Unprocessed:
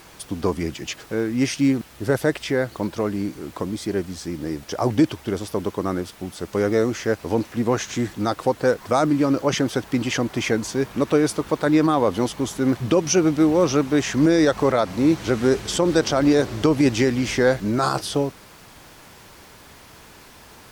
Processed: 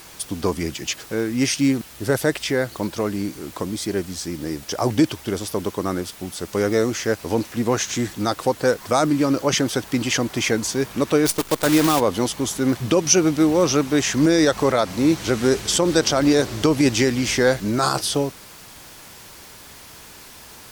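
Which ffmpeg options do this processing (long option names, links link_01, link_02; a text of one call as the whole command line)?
ffmpeg -i in.wav -filter_complex "[0:a]asplit=3[link_01][link_02][link_03];[link_01]afade=type=out:start_time=11.25:duration=0.02[link_04];[link_02]acrusher=bits=5:dc=4:mix=0:aa=0.000001,afade=type=in:start_time=11.25:duration=0.02,afade=type=out:start_time=11.99:duration=0.02[link_05];[link_03]afade=type=in:start_time=11.99:duration=0.02[link_06];[link_04][link_05][link_06]amix=inputs=3:normalize=0,highshelf=frequency=3300:gain=8.5" out.wav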